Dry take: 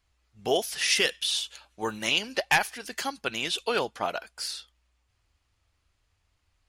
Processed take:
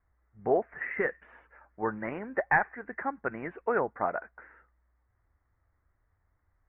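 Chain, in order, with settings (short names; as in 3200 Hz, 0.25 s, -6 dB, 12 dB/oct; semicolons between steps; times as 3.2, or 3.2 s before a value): steep low-pass 2000 Hz 72 dB/oct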